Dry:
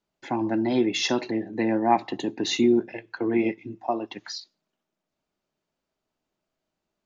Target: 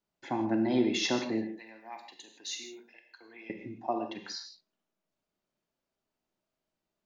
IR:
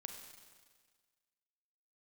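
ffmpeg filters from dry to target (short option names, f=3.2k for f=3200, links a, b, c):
-filter_complex "[0:a]asettb=1/sr,asplit=3[a][b][c];[a]atrim=end=1.454[d];[b]atrim=start=1.45:end=3.5,asetpts=PTS-STARTPTS,afade=t=in:d=0.004:c=qsin,afade=t=out:st=2.046:d=0.004:c=qsin,aderivative[e];[c]atrim=start=3.496[f];[d][e]acrossfade=d=0.004:c1=hsin:c2=qsin[g];[g][f]acrossfade=d=0.004:c1=qsin:c2=hsin[h];[1:a]atrim=start_sample=2205,afade=t=out:st=0.22:d=0.01,atrim=end_sample=10143[i];[h][i]afir=irnorm=-1:irlink=0"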